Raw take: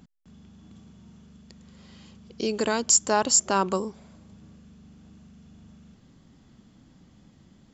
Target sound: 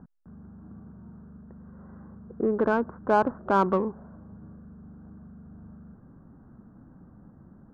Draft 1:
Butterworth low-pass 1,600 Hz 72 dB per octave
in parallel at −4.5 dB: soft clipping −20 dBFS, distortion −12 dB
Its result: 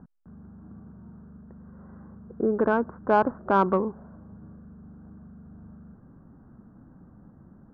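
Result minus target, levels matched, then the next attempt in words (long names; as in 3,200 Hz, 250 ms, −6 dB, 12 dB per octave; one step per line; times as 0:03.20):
soft clipping: distortion −6 dB
Butterworth low-pass 1,600 Hz 72 dB per octave
in parallel at −4.5 dB: soft clipping −26.5 dBFS, distortion −7 dB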